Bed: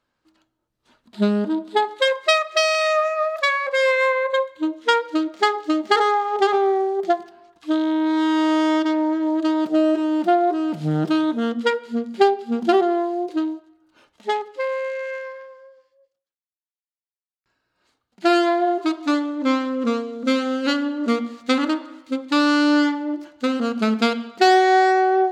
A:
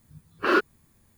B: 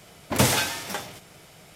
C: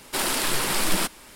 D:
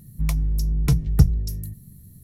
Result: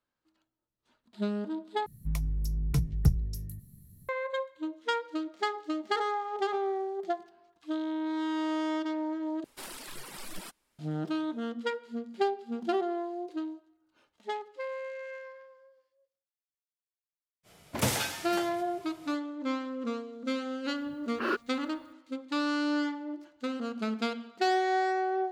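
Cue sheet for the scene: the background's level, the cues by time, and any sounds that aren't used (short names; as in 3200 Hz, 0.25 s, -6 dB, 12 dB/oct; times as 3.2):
bed -12.5 dB
1.86 replace with D -8.5 dB
9.44 replace with C -17 dB + reverb removal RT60 1.1 s
17.43 add B -8 dB, fades 0.05 s
20.76 add A -9.5 dB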